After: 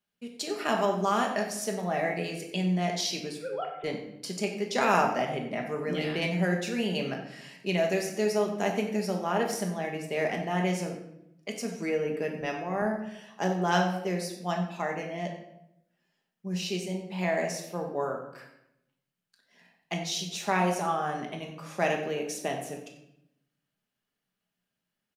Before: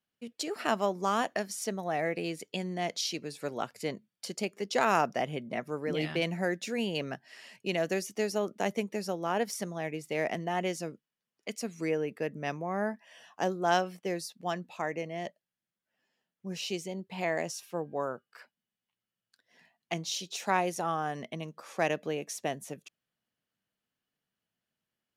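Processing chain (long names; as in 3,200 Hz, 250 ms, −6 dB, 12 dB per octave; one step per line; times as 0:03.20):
0:03.38–0:03.84: three sine waves on the formant tracks
0:12.41–0:12.82: high-pass filter 210 Hz
single-tap delay 92 ms −15.5 dB
convolution reverb RT60 0.80 s, pre-delay 5 ms, DRR 1 dB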